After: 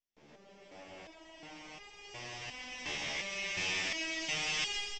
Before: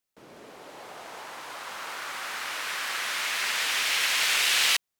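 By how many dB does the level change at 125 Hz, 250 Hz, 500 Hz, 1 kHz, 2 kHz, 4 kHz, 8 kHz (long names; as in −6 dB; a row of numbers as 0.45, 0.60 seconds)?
can't be measured, +3.0 dB, −4.0 dB, −13.0 dB, −10.0 dB, −11.0 dB, −12.5 dB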